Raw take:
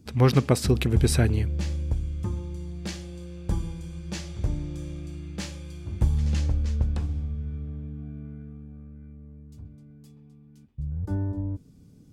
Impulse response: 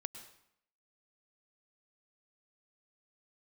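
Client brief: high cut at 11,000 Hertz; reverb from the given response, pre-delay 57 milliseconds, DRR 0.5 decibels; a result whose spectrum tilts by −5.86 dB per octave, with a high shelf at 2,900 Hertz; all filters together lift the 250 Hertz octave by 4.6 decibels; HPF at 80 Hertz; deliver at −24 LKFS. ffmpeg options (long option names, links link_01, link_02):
-filter_complex "[0:a]highpass=80,lowpass=11000,equalizer=frequency=250:width_type=o:gain=6,highshelf=frequency=2900:gain=6,asplit=2[link_01][link_02];[1:a]atrim=start_sample=2205,adelay=57[link_03];[link_02][link_03]afir=irnorm=-1:irlink=0,volume=2dB[link_04];[link_01][link_04]amix=inputs=2:normalize=0"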